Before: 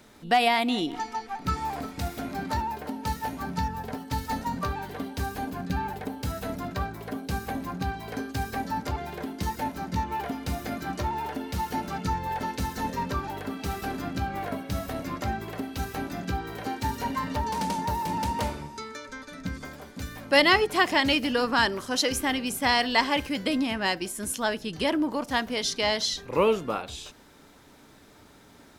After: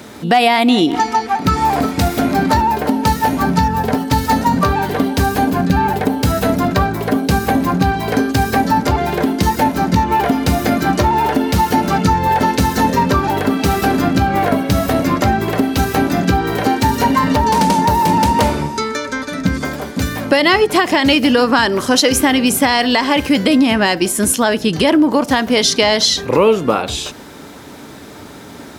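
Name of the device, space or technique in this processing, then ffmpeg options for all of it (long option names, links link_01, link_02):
mastering chain: -af "highpass=59,equalizer=frequency=310:width_type=o:width=2.6:gain=3,acompressor=threshold=-27dB:ratio=3,alimiter=level_in=18dB:limit=-1dB:release=50:level=0:latency=1,volume=-1dB"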